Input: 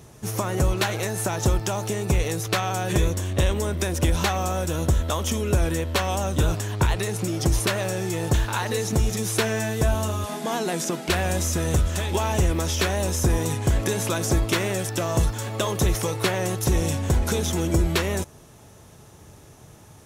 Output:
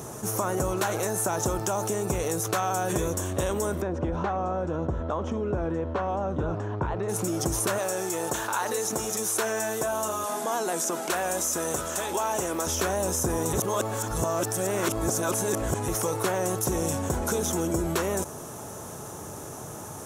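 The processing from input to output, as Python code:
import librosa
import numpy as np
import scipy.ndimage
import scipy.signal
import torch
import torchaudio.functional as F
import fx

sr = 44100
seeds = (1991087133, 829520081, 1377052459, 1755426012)

y = fx.spacing_loss(x, sr, db_at_10k=41, at=(3.8, 7.08), fade=0.02)
y = fx.highpass(y, sr, hz=470.0, slope=6, at=(7.78, 12.67))
y = fx.edit(y, sr, fx.reverse_span(start_s=13.53, length_s=2.35), tone=tone)
y = fx.highpass(y, sr, hz=290.0, slope=6)
y = fx.band_shelf(y, sr, hz=3000.0, db=-9.5, octaves=1.7)
y = fx.env_flatten(y, sr, amount_pct=50)
y = F.gain(torch.from_numpy(y), -2.0).numpy()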